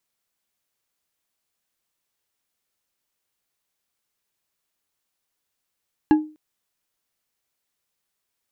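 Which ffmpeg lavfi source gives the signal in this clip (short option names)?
-f lavfi -i "aevalsrc='0.376*pow(10,-3*t/0.34)*sin(2*PI*307*t)+0.133*pow(10,-3*t/0.167)*sin(2*PI*846.4*t)+0.0473*pow(10,-3*t/0.104)*sin(2*PI*1659*t)+0.0168*pow(10,-3*t/0.073)*sin(2*PI*2742.4*t)+0.00596*pow(10,-3*t/0.055)*sin(2*PI*4095.4*t)':d=0.25:s=44100"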